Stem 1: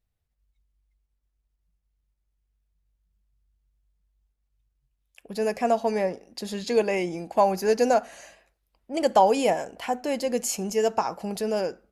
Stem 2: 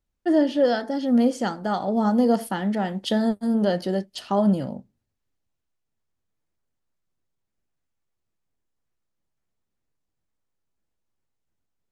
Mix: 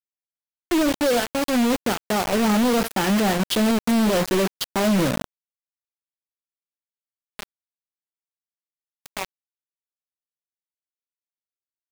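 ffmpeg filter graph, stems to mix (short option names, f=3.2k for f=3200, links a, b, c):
-filter_complex "[0:a]volume=-13dB[a];[1:a]equalizer=f=390:w=2.7:g=4.5,dynaudnorm=f=290:g=17:m=13dB,alimiter=limit=-10dB:level=0:latency=1:release=15,adelay=450,volume=-0.5dB[b];[a][b]amix=inputs=2:normalize=0,asoftclip=type=hard:threshold=-17dB,acrusher=bits=3:mix=0:aa=0.000001"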